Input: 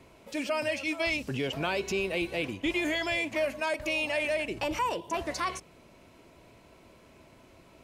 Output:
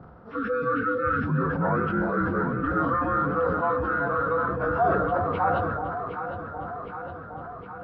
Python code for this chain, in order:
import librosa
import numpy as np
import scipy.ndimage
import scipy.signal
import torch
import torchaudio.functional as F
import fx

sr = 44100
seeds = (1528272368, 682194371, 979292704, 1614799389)

p1 = fx.partial_stretch(x, sr, pct=76)
p2 = fx.curve_eq(p1, sr, hz=(200.0, 300.0, 1200.0, 2300.0, 4700.0), db=(0, -13, -2, -24, -29))
p3 = fx.rider(p2, sr, range_db=4, speed_s=0.5)
p4 = p2 + F.gain(torch.from_numpy(p3), 2.0).numpy()
p5 = fx.spec_erase(p4, sr, start_s=0.36, length_s=0.86, low_hz=520.0, high_hz=1100.0)
p6 = p5 + fx.echo_alternate(p5, sr, ms=381, hz=820.0, feedback_pct=80, wet_db=-5.5, dry=0)
p7 = fx.sustainer(p6, sr, db_per_s=26.0)
y = F.gain(torch.from_numpy(p7), 5.0).numpy()